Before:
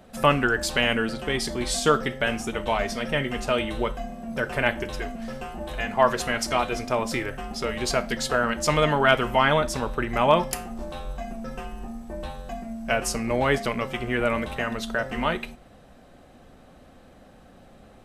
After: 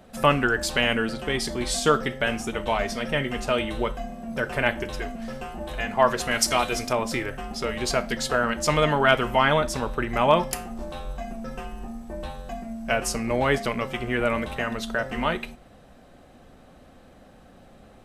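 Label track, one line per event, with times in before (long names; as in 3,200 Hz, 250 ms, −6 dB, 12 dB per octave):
6.310000	6.930000	high-shelf EQ 3,600 Hz +10 dB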